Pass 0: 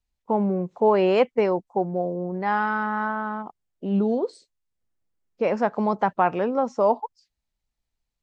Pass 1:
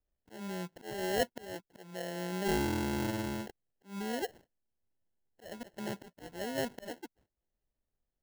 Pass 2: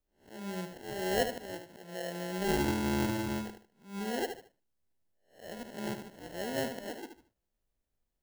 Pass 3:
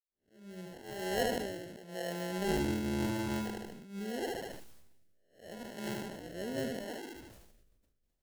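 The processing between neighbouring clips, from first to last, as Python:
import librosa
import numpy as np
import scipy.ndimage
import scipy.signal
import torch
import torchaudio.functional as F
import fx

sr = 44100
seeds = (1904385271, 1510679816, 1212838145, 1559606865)

y1 = fx.auto_swell(x, sr, attack_ms=733.0)
y1 = fx.dynamic_eq(y1, sr, hz=1300.0, q=0.91, threshold_db=-38.0, ratio=4.0, max_db=-4)
y1 = fx.sample_hold(y1, sr, seeds[0], rate_hz=1200.0, jitter_pct=0)
y1 = y1 * librosa.db_to_amplitude(-5.0)
y2 = fx.spec_swells(y1, sr, rise_s=0.38)
y2 = fx.echo_feedback(y2, sr, ms=75, feedback_pct=28, wet_db=-8)
y3 = fx.fade_in_head(y2, sr, length_s=1.37)
y3 = fx.rotary(y3, sr, hz=0.8)
y3 = fx.sustainer(y3, sr, db_per_s=37.0)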